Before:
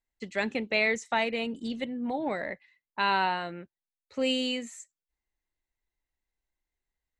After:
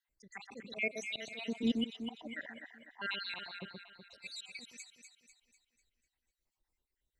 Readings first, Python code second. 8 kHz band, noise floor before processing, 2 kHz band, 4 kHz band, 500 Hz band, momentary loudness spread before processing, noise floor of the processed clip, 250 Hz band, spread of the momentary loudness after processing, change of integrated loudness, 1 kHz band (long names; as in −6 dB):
−6.0 dB, below −85 dBFS, −10.0 dB, −8.5 dB, −14.5 dB, 16 LU, below −85 dBFS, −6.0 dB, 18 LU, −10.0 dB, −21.0 dB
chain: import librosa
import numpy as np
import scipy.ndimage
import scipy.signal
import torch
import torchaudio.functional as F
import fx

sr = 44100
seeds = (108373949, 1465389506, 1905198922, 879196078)

y = fx.spec_dropout(x, sr, seeds[0], share_pct=69)
y = fx.auto_swell(y, sr, attack_ms=297.0)
y = fx.echo_alternate(y, sr, ms=124, hz=1500.0, feedback_pct=68, wet_db=-4.0)
y = y * librosa.db_to_amplitude(4.0)